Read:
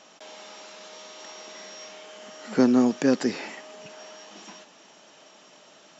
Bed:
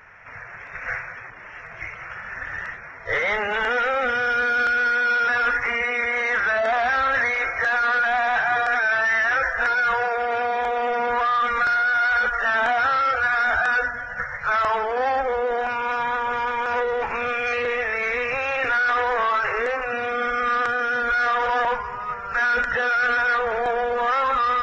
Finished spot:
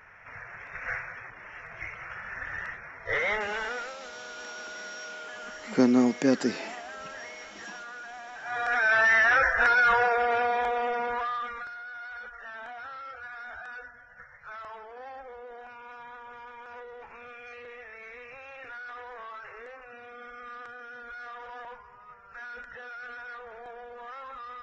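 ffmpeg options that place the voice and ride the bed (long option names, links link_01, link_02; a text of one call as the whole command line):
ffmpeg -i stem1.wav -i stem2.wav -filter_complex "[0:a]adelay=3200,volume=-2dB[link_01];[1:a]volume=16.5dB,afade=type=out:start_time=3.29:duration=0.67:silence=0.141254,afade=type=in:start_time=8.41:duration=0.59:silence=0.0841395,afade=type=out:start_time=10.04:duration=1.66:silence=0.0944061[link_02];[link_01][link_02]amix=inputs=2:normalize=0" out.wav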